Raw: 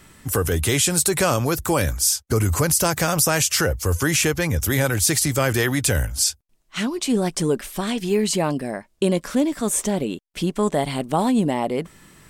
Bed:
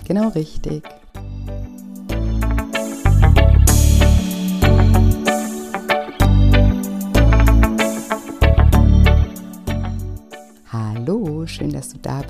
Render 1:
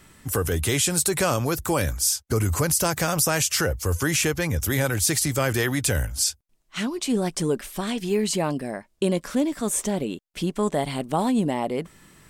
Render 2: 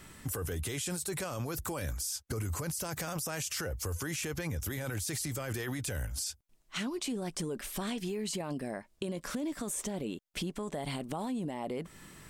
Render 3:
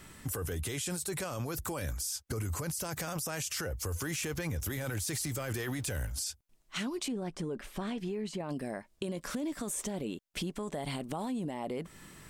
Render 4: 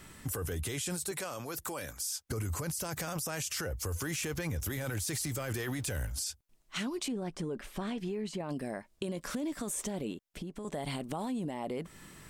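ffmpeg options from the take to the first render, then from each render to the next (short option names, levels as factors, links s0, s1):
-af "volume=0.708"
-af "alimiter=limit=0.0944:level=0:latency=1:release=17,acompressor=threshold=0.0178:ratio=3"
-filter_complex "[0:a]asettb=1/sr,asplit=3[s0][s1][s2];[s0]atrim=end=3.934[s3];[s1]atrim=start=3.93:end=6.12,asetpts=PTS-STARTPTS,afade=t=in:d=0.004:c=qsin,afade=t=out:st=2.186:d=0.004:c=qsin,aeval=exprs='val(0)+0.5*0.00335*sgn(val(0))':c=same[s4];[s2]atrim=start=6.116[s5];[s3][s4]acrossfade=d=0.004:c1=hsin:c2=qsin[s6];[s6][s5]acrossfade=d=0.004:c1=qsin:c2=hsin,asettb=1/sr,asplit=3[s7][s8][s9];[s7]atrim=end=7.084[s10];[s8]atrim=start=7.08:end=8.49,asetpts=PTS-STARTPTS,afade=t=in:d=0.004:c=qsin,afade=t=out:st=1.406:d=0.004:c=qsin,lowpass=f=2000:p=1[s11];[s9]atrim=start=8.486[s12];[s10][s11]acrossfade=d=0.004:c1=hsin:c2=qsin[s13];[s13][s12]acrossfade=d=0.004:c1=qsin:c2=hsin"
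-filter_complex "[0:a]asettb=1/sr,asplit=3[s0][s1][s2];[s0]atrim=end=1.114[s3];[s1]atrim=start=1.11:end=2.24,asetpts=PTS-STARTPTS,afade=t=in:d=0.004:c=qsin,afade=t=out:st=1.126:d=0.004:c=qsin,highpass=f=350:p=1[s4];[s2]atrim=start=2.236[s5];[s3][s4]acrossfade=d=0.004:c1=hsin:c2=qsin[s6];[s6][s5]acrossfade=d=0.004:c1=qsin:c2=hsin,asettb=1/sr,asplit=3[s7][s8][s9];[s7]atrim=end=10.114[s10];[s8]atrim=start=10.11:end=10.65,asetpts=PTS-STARTPTS,afade=t=in:d=0.004:c=qsin,afade=t=out:st=0.536:d=0.004:c=qsin,acrossover=split=750|2200[s11][s12][s13];[s11]acompressor=threshold=0.0126:ratio=4[s14];[s12]acompressor=threshold=0.001:ratio=4[s15];[s13]acompressor=threshold=0.002:ratio=4[s16];[s14][s15][s16]amix=inputs=3:normalize=0[s17];[s9]atrim=start=10.646[s18];[s10][s17]acrossfade=d=0.004:c1=hsin:c2=qsin[s19];[s19][s18]acrossfade=d=0.004:c1=qsin:c2=hsin"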